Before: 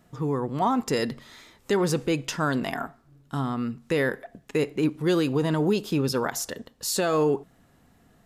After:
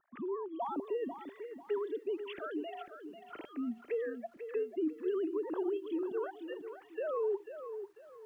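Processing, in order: sine-wave speech; in parallel at -2 dB: limiter -19 dBFS, peak gain reduction 7 dB; on the sum: compressor 1.5:1, threshold -38 dBFS, peak gain reduction 9 dB; envelope phaser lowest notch 480 Hz, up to 2300 Hz, full sweep at -26.5 dBFS; lo-fi delay 0.493 s, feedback 35%, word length 10-bit, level -9.5 dB; gain -7.5 dB

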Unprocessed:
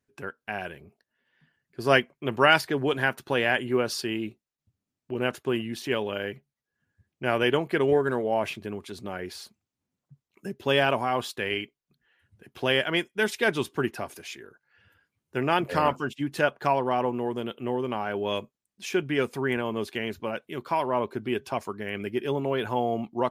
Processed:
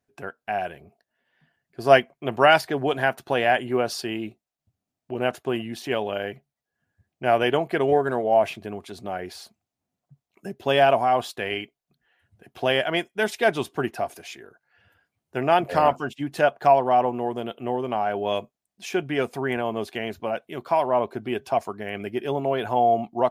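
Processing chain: bell 700 Hz +11.5 dB 0.42 oct

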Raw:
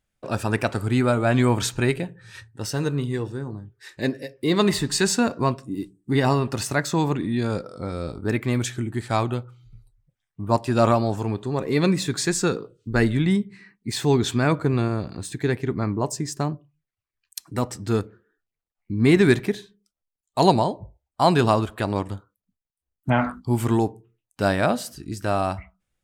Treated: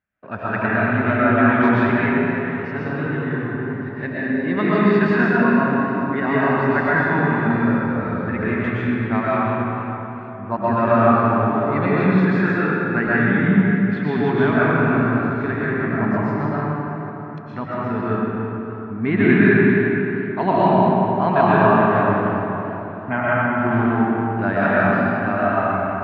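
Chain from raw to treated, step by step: speaker cabinet 110–2300 Hz, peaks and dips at 130 Hz -8 dB, 330 Hz -7 dB, 500 Hz -8 dB, 800 Hz -3 dB, 1600 Hz +5 dB; digital reverb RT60 3.6 s, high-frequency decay 0.55×, pre-delay 80 ms, DRR -9 dB; warbling echo 0.467 s, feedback 58%, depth 165 cents, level -21.5 dB; gain -1.5 dB

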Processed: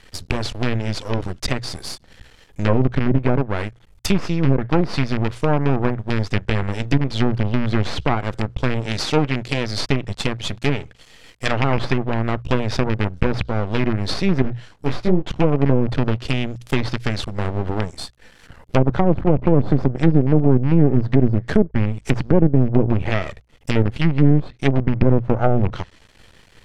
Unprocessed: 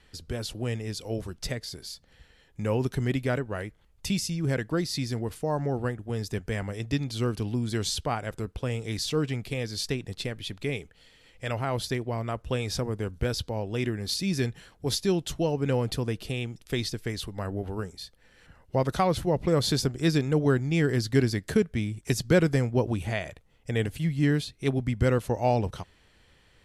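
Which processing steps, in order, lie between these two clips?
rattling part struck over -27 dBFS, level -20 dBFS; 11.45–11.96 bell 3800 Hz +6.5 dB 2.6 oct; half-wave rectifier; 8.8–9.66 low shelf 130 Hz -5.5 dB; treble ducked by the level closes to 510 Hz, closed at -22 dBFS; notches 60/120 Hz; maximiser +15 dB; 14.42–15.23 detuned doubles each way 55 cents; gain -1 dB

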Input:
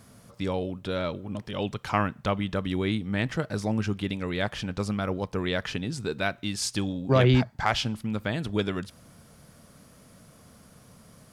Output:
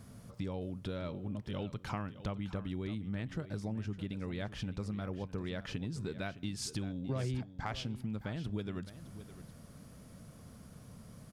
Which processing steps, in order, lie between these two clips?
low shelf 300 Hz +9 dB; compressor 4:1, threshold -31 dBFS, peak gain reduction 18 dB; echo 0.612 s -14 dB; gain -5.5 dB

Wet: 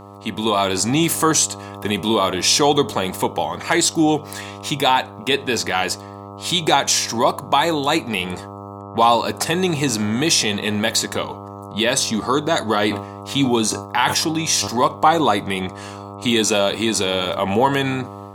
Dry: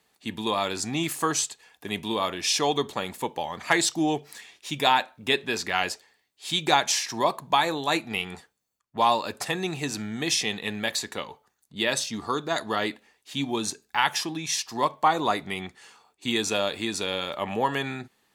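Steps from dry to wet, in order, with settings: buzz 100 Hz, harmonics 13, -46 dBFS -2 dB/oct; AGC gain up to 6.5 dB; in parallel at 0 dB: limiter -13.5 dBFS, peak gain reduction 11.5 dB; on the sum: dynamic EQ 2000 Hz, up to -4 dB, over -28 dBFS, Q 0.75; 12.78–14.68 sustainer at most 85 dB/s

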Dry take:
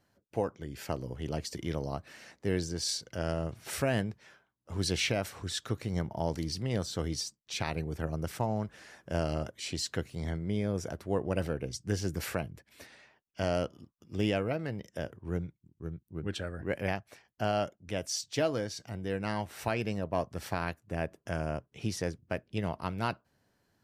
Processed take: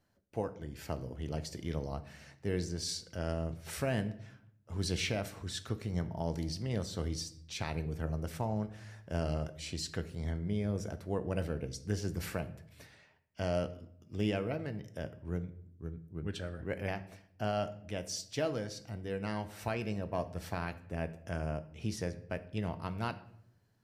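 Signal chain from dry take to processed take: low shelf 110 Hz +6 dB; reverb RT60 0.70 s, pre-delay 5 ms, DRR 10.5 dB; gain -5 dB

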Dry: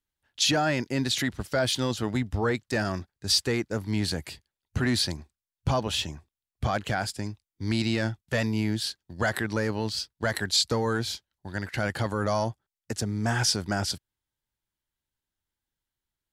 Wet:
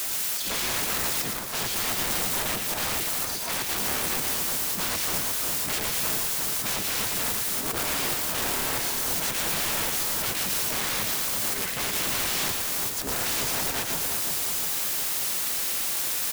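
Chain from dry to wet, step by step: treble ducked by the level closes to 1300 Hz, closed at -24.5 dBFS; comb 6 ms, depth 73%; added noise white -45 dBFS; low shelf 90 Hz -11.5 dB; auto swell 0.302 s; in parallel at -1.5 dB: compressor 12:1, threshold -38 dBFS, peak gain reduction 17 dB; on the sum: limiter -25.5 dBFS, peak gain reduction 11 dB; harmoniser +5 st -1 dB, +12 st -5 dB; wrapped overs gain 31 dB; high shelf 5100 Hz +4.5 dB; on a send: split-band echo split 1700 Hz, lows 0.354 s, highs 0.114 s, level -4 dB; on the sum: gain +5 dB

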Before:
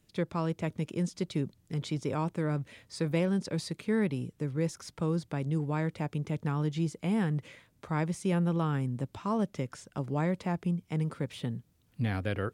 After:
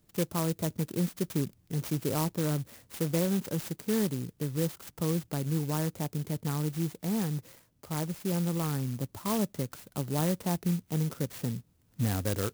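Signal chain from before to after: vocal rider 2 s; clock jitter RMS 0.12 ms

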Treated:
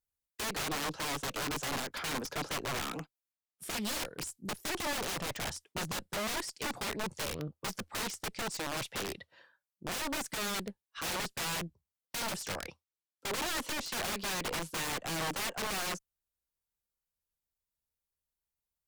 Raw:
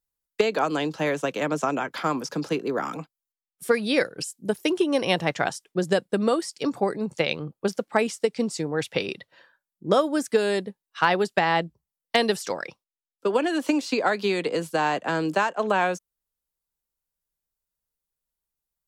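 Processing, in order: tube stage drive 17 dB, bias 0.65; bell 81 Hz +10.5 dB 0.43 oct; wrapped overs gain 28 dB; Doppler distortion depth 0.2 ms; gain -2 dB

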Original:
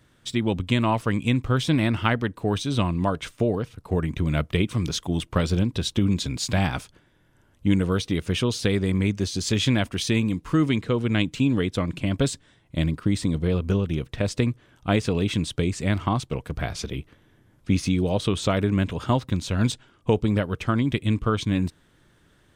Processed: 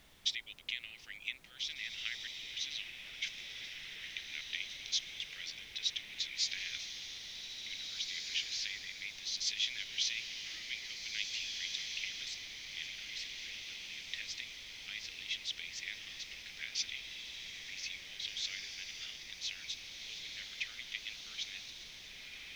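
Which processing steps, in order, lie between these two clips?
compressor 6:1, threshold -31 dBFS, peak gain reduction 15.5 dB; elliptic band-pass 2000–6000 Hz, stop band 40 dB; added noise pink -68 dBFS; on a send: diffused feedback echo 1.942 s, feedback 47%, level -4 dB; on the sum: gain +3.5 dB

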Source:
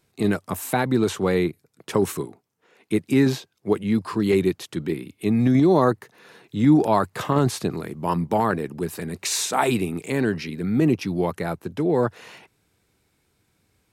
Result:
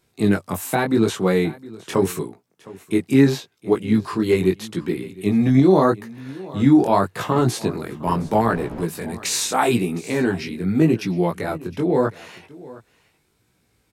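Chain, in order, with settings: 8.06–8.82 wind noise 470 Hz -27 dBFS; chorus 0.81 Hz, delay 16.5 ms, depth 5.9 ms; echo 0.712 s -20 dB; gain +5 dB

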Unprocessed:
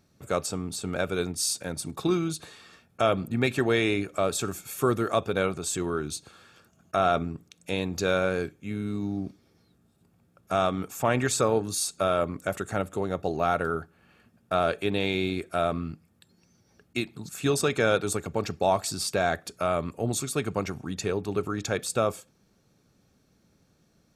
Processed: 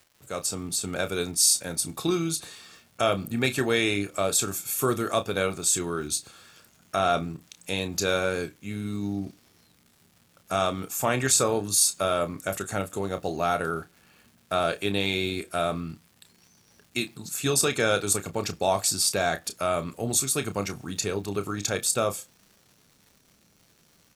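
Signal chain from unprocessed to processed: opening faded in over 0.64 s; high shelf 3800 Hz +11.5 dB; crackle 330/s -45 dBFS; doubler 30 ms -10 dB; gain -1.5 dB

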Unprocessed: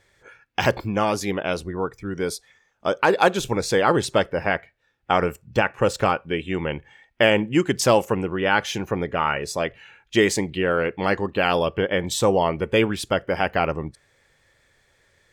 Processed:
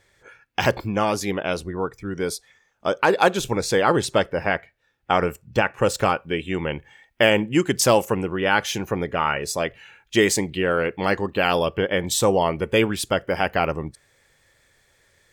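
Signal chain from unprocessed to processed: high shelf 7500 Hz +3 dB, from 5.77 s +9 dB

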